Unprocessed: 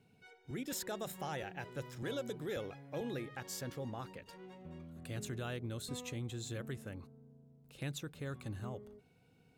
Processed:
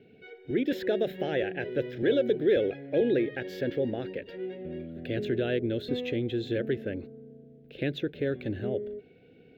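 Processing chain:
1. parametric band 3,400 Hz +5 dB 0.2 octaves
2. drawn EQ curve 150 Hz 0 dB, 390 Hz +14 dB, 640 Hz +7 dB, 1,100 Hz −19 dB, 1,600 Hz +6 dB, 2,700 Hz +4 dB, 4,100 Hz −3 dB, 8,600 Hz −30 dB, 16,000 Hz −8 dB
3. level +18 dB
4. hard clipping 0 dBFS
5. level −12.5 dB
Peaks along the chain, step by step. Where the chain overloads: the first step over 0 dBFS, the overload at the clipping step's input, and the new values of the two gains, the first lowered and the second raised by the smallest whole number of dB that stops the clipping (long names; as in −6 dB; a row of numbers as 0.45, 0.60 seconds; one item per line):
−28.5, −20.0, −2.0, −2.0, −14.5 dBFS
no step passes full scale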